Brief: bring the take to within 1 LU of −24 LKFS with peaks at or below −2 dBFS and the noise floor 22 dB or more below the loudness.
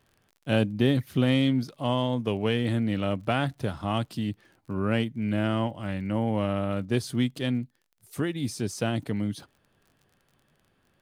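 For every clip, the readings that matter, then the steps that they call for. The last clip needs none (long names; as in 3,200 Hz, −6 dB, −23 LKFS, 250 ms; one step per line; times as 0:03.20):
crackle rate 36 per second; integrated loudness −28.0 LKFS; sample peak −10.0 dBFS; target loudness −24.0 LKFS
→ click removal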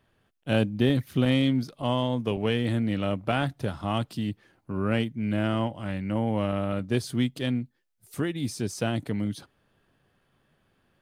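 crackle rate 0.091 per second; integrated loudness −28.0 LKFS; sample peak −10.0 dBFS; target loudness −24.0 LKFS
→ level +4 dB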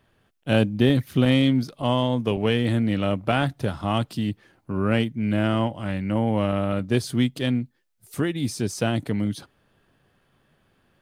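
integrated loudness −24.0 LKFS; sample peak −6.0 dBFS; background noise floor −66 dBFS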